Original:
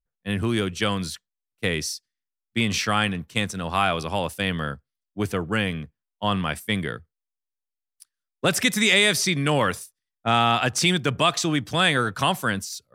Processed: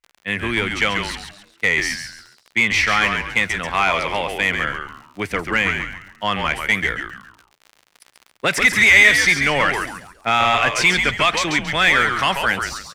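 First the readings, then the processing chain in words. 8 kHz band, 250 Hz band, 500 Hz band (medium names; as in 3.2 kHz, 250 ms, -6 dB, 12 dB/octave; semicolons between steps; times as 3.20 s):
+1.0 dB, -2.5 dB, +1.5 dB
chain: peaking EQ 2.1 kHz +12.5 dB 0.52 oct; crackle 33 per s -32 dBFS; overdrive pedal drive 11 dB, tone 3.8 kHz, clips at -5 dBFS; on a send: frequency-shifting echo 137 ms, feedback 34%, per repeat -130 Hz, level -6 dB; on the sum: trim -1 dB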